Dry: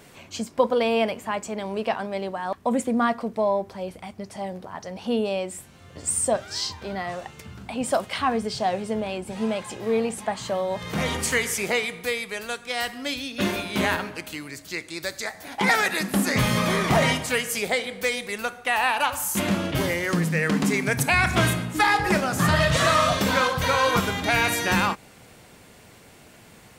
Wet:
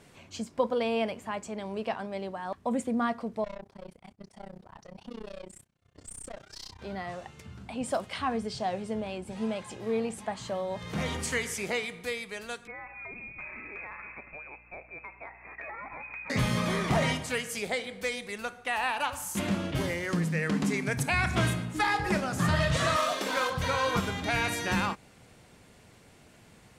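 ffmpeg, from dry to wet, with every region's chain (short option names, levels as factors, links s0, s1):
-filter_complex "[0:a]asettb=1/sr,asplit=3[s0][s1][s2];[s0]atrim=end=3.444[s3];[s1]atrim=start=3.44:end=6.79,asetpts=PTS-STARTPTS,afade=t=in:d=0.004:c=qsin,afade=t=out:st=3.346:d=0.004:c=qsin,agate=range=0.0224:threshold=0.01:ratio=3:release=100:detection=peak,aeval=exprs='(tanh(28.2*val(0)+0.3)-tanh(0.3))/28.2':c=same,tremolo=f=31:d=0.974[s4];[s2]atrim=start=6.786[s5];[s3][s4]acrossfade=d=0.004:c1=hsin:c2=qsin[s6];[s6][s5]acrossfade=d=0.004:c1=qsin:c2=hsin,asettb=1/sr,asplit=3[s7][s8][s9];[s7]atrim=end=12.674[s10];[s8]atrim=start=12.67:end=16.3,asetpts=PTS-STARTPTS,afade=t=in:d=0.004:c=qsin,afade=t=out:st=3.626:d=0.004:c=qsin,lowpass=f=2300:t=q:w=0.5098,lowpass=f=2300:t=q:w=0.6013,lowpass=f=2300:t=q:w=0.9,lowpass=f=2300:t=q:w=2.563,afreqshift=-2700,acompressor=threshold=0.0282:ratio=6:attack=3.2:release=140:knee=1:detection=peak,aeval=exprs='val(0)+0.00141*(sin(2*PI*60*n/s)+sin(2*PI*2*60*n/s)/2+sin(2*PI*3*60*n/s)/3+sin(2*PI*4*60*n/s)/4+sin(2*PI*5*60*n/s)/5)':c=same[s11];[s9]atrim=start=16.296[s12];[s10][s11]acrossfade=d=0.004:c1=hsin:c2=qsin[s13];[s13][s12]acrossfade=d=0.004:c1=qsin:c2=hsin,asettb=1/sr,asplit=3[s14][s15][s16];[s14]atrim=end=22.964[s17];[s15]atrim=start=22.96:end=23.5,asetpts=PTS-STARTPTS,afade=t=in:d=0.004:c=qsin,afade=t=out:st=0.536:d=0.004:c=qsin,highpass=f=280:w=0.5412,highpass=f=280:w=1.3066,acrusher=bits=3:mode=log:mix=0:aa=0.000001[s18];[s16]atrim=start=23.496[s19];[s17][s18]acrossfade=d=0.004:c1=hsin:c2=qsin[s20];[s20][s19]acrossfade=d=0.004:c1=qsin:c2=hsin,lowpass=11000,lowshelf=f=210:g=4.5,volume=0.422"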